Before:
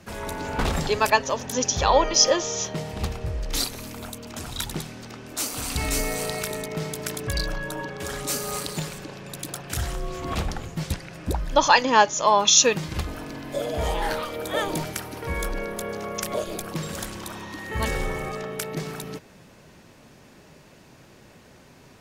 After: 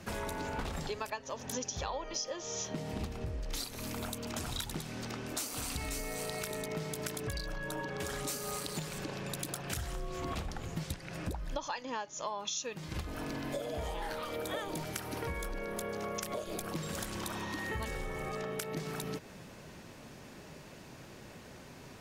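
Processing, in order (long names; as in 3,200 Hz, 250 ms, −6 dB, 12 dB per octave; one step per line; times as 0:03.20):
0:02.70–0:03.42: parametric band 260 Hz +7.5 dB 0.77 octaves
downward compressor 20 to 1, threshold −34 dBFS, peak gain reduction 24.5 dB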